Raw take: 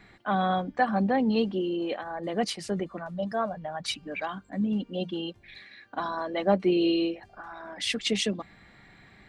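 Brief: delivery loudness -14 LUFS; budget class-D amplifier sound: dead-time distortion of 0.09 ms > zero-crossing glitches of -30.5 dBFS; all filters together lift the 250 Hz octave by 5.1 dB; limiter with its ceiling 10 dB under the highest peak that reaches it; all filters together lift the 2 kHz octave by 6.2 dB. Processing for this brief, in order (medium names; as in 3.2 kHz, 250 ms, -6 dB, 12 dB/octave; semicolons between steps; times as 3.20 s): peaking EQ 250 Hz +7 dB; peaking EQ 2 kHz +8 dB; peak limiter -18.5 dBFS; dead-time distortion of 0.09 ms; zero-crossing glitches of -30.5 dBFS; trim +15 dB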